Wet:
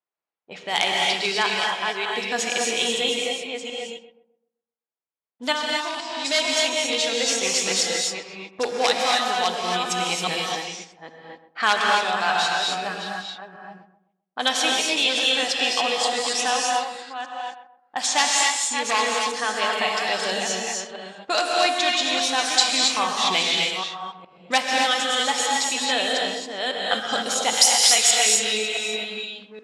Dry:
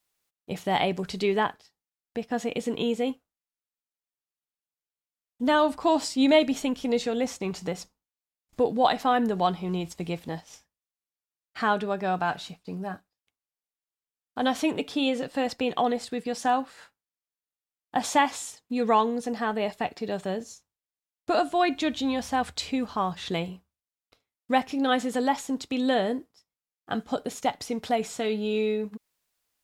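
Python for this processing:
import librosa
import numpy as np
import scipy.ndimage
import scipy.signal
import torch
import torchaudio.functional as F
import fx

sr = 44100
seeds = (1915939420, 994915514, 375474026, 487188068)

p1 = fx.reverse_delay(x, sr, ms=411, wet_db=-7.5)
p2 = 10.0 ** (-14.0 / 20.0) * (np.abs((p1 / 10.0 ** (-14.0 / 20.0) + 3.0) % 4.0 - 2.0) - 1.0)
p3 = fx.tilt_eq(p2, sr, slope=4.0, at=(27.53, 28.11))
p4 = fx.rider(p3, sr, range_db=4, speed_s=0.5)
p5 = p4 + fx.echo_filtered(p4, sr, ms=129, feedback_pct=36, hz=3700.0, wet_db=-12, dry=0)
p6 = fx.level_steps(p5, sr, step_db=10, at=(5.51, 6.24), fade=0.02)
p7 = fx.env_lowpass(p6, sr, base_hz=700.0, full_db=-24.0)
p8 = fx.weighting(p7, sr, curve='ITU-R 468')
p9 = fx.rev_gated(p8, sr, seeds[0], gate_ms=300, shape='rising', drr_db=-1.0)
y = p9 * 10.0 ** (1.5 / 20.0)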